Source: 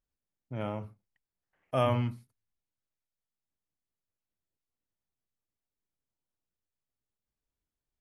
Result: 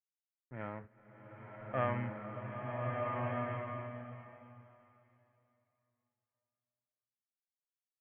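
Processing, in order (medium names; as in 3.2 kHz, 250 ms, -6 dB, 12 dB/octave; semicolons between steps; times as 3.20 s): crossover distortion -48 dBFS; four-pole ladder low-pass 2 kHz, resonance 70%; swelling reverb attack 1540 ms, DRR -2 dB; trim +3.5 dB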